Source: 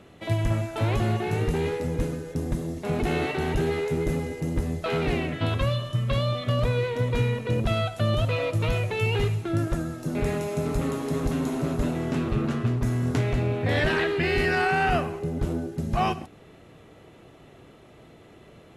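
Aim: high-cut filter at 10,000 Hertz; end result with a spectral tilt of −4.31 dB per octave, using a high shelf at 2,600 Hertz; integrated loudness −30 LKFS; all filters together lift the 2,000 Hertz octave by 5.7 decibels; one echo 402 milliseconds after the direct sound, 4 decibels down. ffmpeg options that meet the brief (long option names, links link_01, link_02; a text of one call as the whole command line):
ffmpeg -i in.wav -af "lowpass=10000,equalizer=frequency=2000:width_type=o:gain=4,highshelf=frequency=2600:gain=7.5,aecho=1:1:402:0.631,volume=-6.5dB" out.wav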